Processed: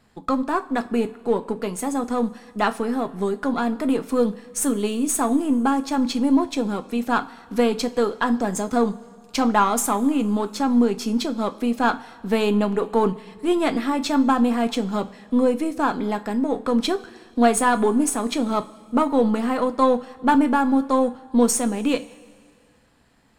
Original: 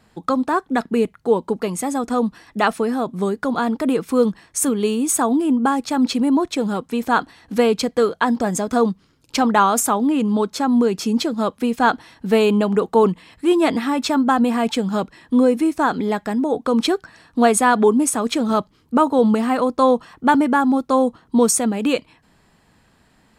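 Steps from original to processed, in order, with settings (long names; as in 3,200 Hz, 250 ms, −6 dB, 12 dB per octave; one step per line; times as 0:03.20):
gain on one half-wave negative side −3 dB
coupled-rooms reverb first 0.26 s, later 2.1 s, from −19 dB, DRR 8 dB
level −3 dB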